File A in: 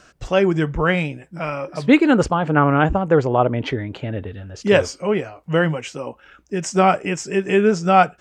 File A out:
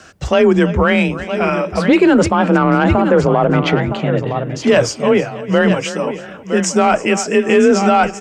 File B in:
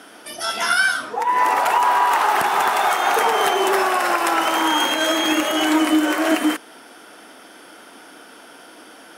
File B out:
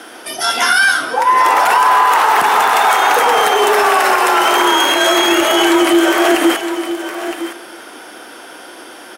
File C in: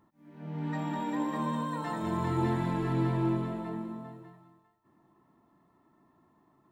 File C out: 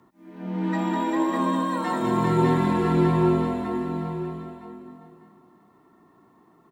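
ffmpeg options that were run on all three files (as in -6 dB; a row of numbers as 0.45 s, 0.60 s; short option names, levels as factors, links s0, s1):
-filter_complex "[0:a]asplit=2[s0][s1];[s1]aecho=0:1:320|640|960:0.119|0.0475|0.019[s2];[s0][s2]amix=inputs=2:normalize=0,acontrast=21,afreqshift=30,asplit=2[s3][s4];[s4]aecho=0:1:963:0.237[s5];[s3][s5]amix=inputs=2:normalize=0,alimiter=limit=0.473:level=0:latency=1:release=32,volume=1.5"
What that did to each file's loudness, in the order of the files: +4.5 LU, +6.5 LU, +8.5 LU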